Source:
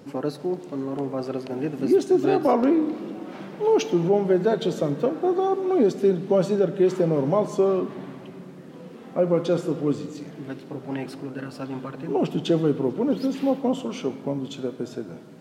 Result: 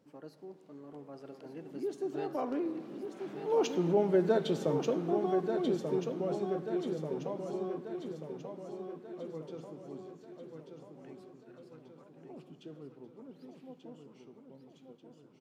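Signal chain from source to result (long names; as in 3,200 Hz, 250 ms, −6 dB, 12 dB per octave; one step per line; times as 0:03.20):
source passing by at 0:04.25, 15 m/s, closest 11 metres
on a send: repeating echo 1,187 ms, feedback 52%, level −6.5 dB
on the sum: level −6.5 dB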